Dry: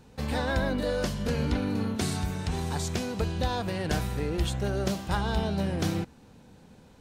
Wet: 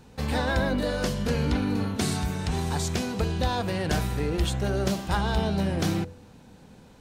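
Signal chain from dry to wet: de-hum 45.07 Hz, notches 14; in parallel at -7 dB: overloaded stage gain 23.5 dB

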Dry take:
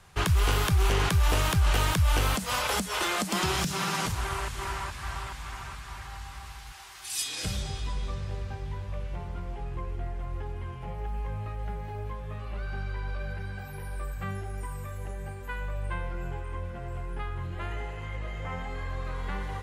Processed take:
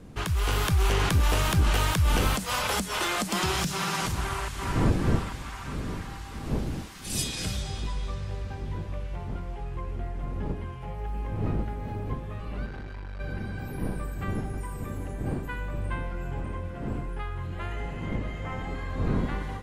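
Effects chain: wind noise 220 Hz -35 dBFS; AGC gain up to 5 dB; 12.66–13.2 tube stage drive 30 dB, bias 0.55; gain -4.5 dB

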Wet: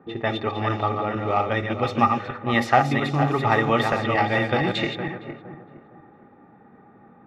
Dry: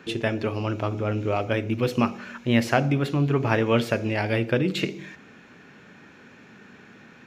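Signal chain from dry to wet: regenerating reverse delay 0.231 s, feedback 55%, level -5 dB; low-pass opened by the level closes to 620 Hz, open at -16.5 dBFS; small resonant body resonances 820/1200/1900/3600 Hz, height 17 dB, ringing for 45 ms; gain -2.5 dB

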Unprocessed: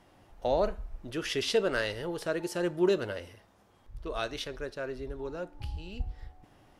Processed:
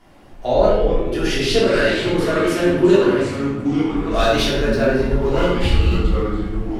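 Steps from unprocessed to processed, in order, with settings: 4.13–5.95 sample leveller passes 2; shoebox room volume 310 m³, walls mixed, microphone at 3.2 m; echoes that change speed 93 ms, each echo -4 st, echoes 3, each echo -6 dB; gain +2.5 dB

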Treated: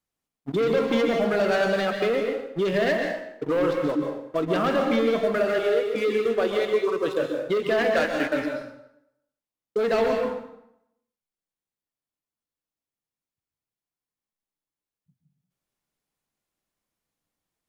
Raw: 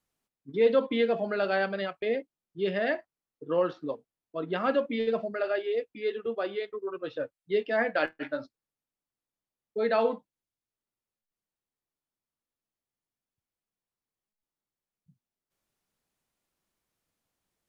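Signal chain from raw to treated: sample leveller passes 3; compressor, threshold -24 dBFS, peak gain reduction 8.5 dB; plate-style reverb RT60 0.79 s, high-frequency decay 0.8×, pre-delay 0.115 s, DRR 2.5 dB; gain +2 dB

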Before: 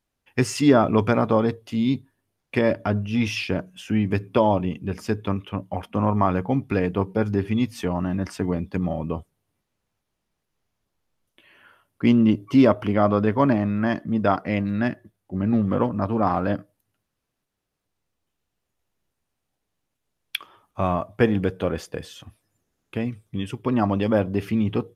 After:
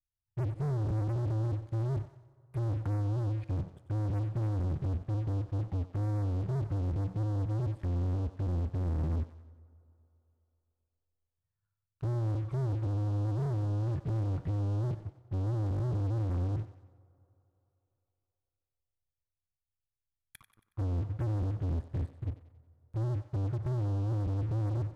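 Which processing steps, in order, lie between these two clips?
low-pass opened by the level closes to 1200 Hz, open at -17.5 dBFS; inverse Chebyshev band-stop 240–5900 Hz, stop band 40 dB; treble ducked by the level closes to 320 Hz, closed at -29.5 dBFS; resonant low shelf 640 Hz -8.5 dB, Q 1.5; in parallel at -1 dB: negative-ratio compressor -45 dBFS, ratio -0.5; on the sum: sample leveller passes 5; thinning echo 92 ms, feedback 49%, high-pass 420 Hz, level -12 dB; on a send at -21.5 dB: reverb RT60 3.5 s, pre-delay 6 ms; on the sum: AAC 96 kbps 32000 Hz

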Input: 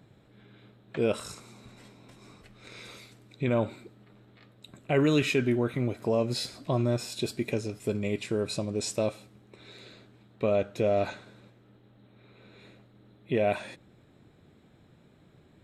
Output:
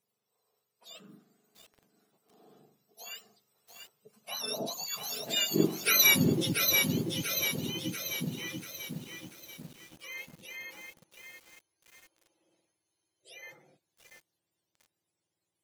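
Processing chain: spectrum mirrored in octaves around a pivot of 1200 Hz; Doppler pass-by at 5.99, 43 m/s, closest 11 m; lo-fi delay 0.687 s, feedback 55%, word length 10-bit, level -4 dB; gain +8.5 dB

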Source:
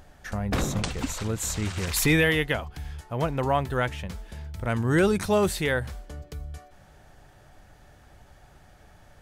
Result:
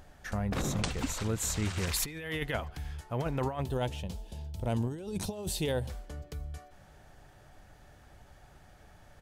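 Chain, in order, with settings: 3.62–5.9 band shelf 1600 Hz -12.5 dB 1.2 oct; negative-ratio compressor -26 dBFS, ratio -0.5; speakerphone echo 0.14 s, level -25 dB; gain -5 dB

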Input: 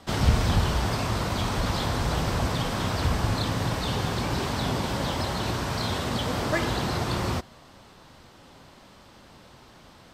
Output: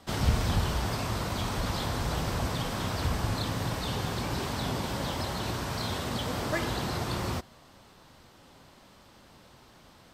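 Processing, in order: high shelf 11000 Hz +7.5 dB; gain -4.5 dB

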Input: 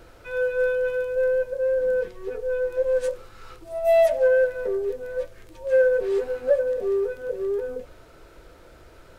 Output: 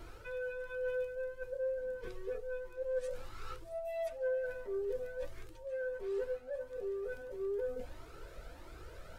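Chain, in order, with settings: reverse; compressor 6:1, threshold -34 dBFS, peak gain reduction 18 dB; reverse; cascading flanger rising 1.5 Hz; gain +1.5 dB

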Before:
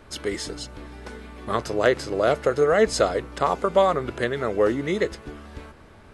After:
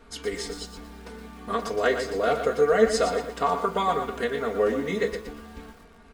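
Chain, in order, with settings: comb 4.3 ms, depth 90%; on a send at -6 dB: reverb RT60 0.40 s, pre-delay 3 ms; on the sum: lo-fi delay 0.118 s, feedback 35%, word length 7-bit, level -8 dB; gain -6 dB

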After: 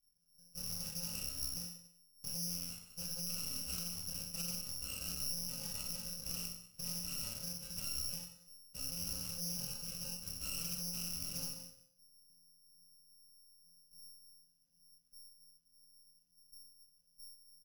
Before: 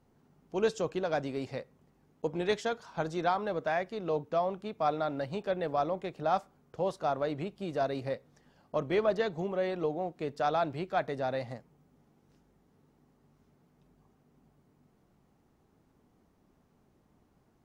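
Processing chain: FFT order left unsorted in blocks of 128 samples; tilt -4 dB/oct; level quantiser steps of 18 dB; resonator bank F3 fifth, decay 0.58 s; reverse bouncing-ball echo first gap 30 ms, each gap 1.3×, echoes 5; limiter -46.5 dBFS, peak gain reduction 8.5 dB; high shelf 7600 Hz +10.5 dB; careless resampling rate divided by 8×, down none, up zero stuff; Doppler distortion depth 0.14 ms; gain +5 dB

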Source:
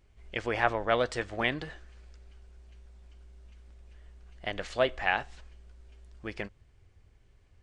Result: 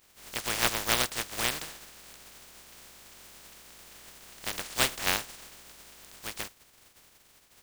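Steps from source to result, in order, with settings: spectral contrast lowered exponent 0.16

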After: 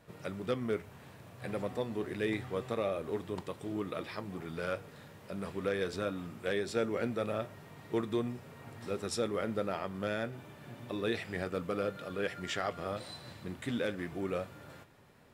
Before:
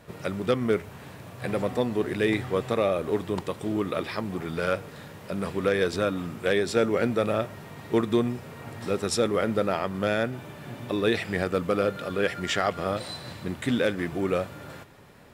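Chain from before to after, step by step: flange 0.25 Hz, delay 6.2 ms, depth 4.2 ms, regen -76%; gain -5 dB

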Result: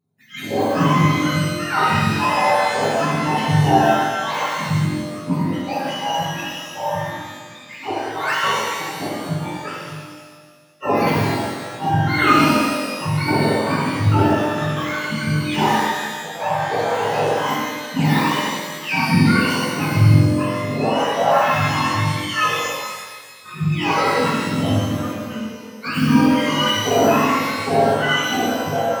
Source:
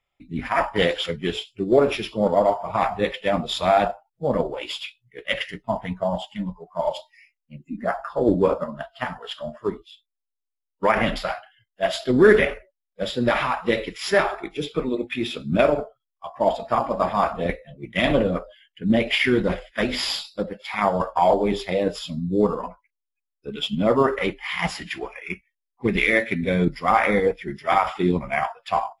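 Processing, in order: spectrum mirrored in octaves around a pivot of 730 Hz; shimmer reverb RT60 1.6 s, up +12 st, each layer -8 dB, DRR -6.5 dB; gain -2.5 dB

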